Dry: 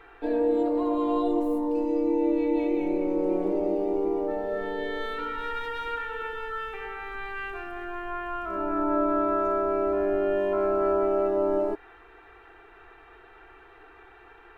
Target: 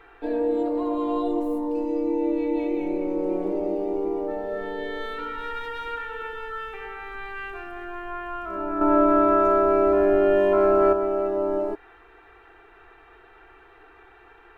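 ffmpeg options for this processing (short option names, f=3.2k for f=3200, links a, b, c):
-filter_complex "[0:a]asettb=1/sr,asplit=3[a][b][c];[a]atrim=end=8.814[d];[b]atrim=start=8.81:end=10.93,asetpts=PTS-STARTPTS,afade=t=in:d=0.004:c=qsin,afade=t=out:st=2.116:d=0.004:c=qsin,acontrast=68[e];[c]atrim=start=10.926[f];[d][e]acrossfade=d=0.004:c1=hsin:c2=qsin[g];[g][f]acrossfade=d=0.004:c1=qsin:c2=hsin"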